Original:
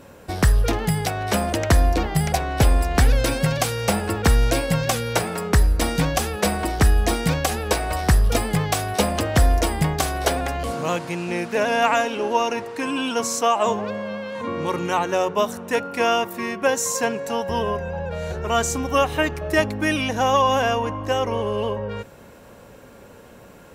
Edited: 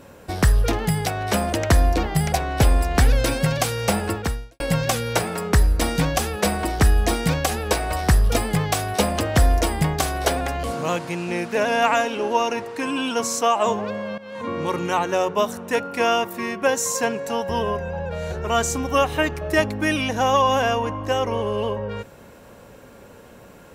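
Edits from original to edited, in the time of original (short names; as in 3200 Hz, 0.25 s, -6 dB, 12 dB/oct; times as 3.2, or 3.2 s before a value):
4.1–4.6 fade out quadratic
14.18–14.56 fade in equal-power, from -15.5 dB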